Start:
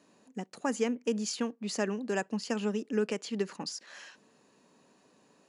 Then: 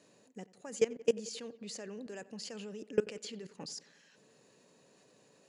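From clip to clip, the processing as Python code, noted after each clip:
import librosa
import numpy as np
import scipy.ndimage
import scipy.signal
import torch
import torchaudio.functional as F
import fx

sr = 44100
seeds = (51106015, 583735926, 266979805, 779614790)

y = fx.graphic_eq(x, sr, hz=(125, 250, 500, 1000, 2000, 4000, 8000), db=(9, -3, 8, -3, 4, 4, 7))
y = fx.level_steps(y, sr, step_db=21)
y = fx.echo_filtered(y, sr, ms=89, feedback_pct=71, hz=3100.0, wet_db=-20.0)
y = y * 10.0 ** (-2.0 / 20.0)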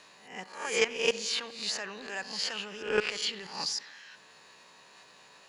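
y = fx.spec_swells(x, sr, rise_s=0.5)
y = fx.graphic_eq_10(y, sr, hz=(125, 250, 500, 1000, 2000, 4000, 8000), db=(-10, -10, -9, 7, 4, 5, -6))
y = fx.rev_spring(y, sr, rt60_s=1.4, pass_ms=(54, 58), chirp_ms=50, drr_db=17.5)
y = y * 10.0 ** (8.5 / 20.0)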